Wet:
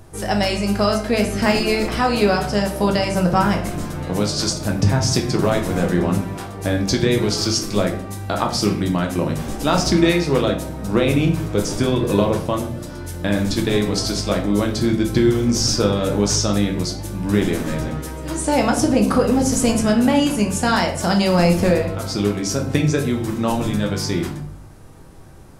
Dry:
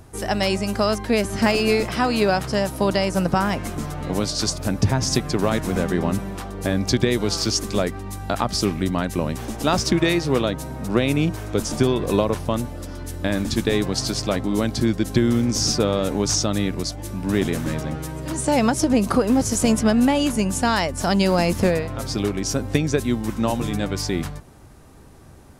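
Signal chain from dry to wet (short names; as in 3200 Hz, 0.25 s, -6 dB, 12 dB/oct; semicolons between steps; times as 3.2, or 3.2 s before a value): shoebox room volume 78 m³, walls mixed, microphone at 0.6 m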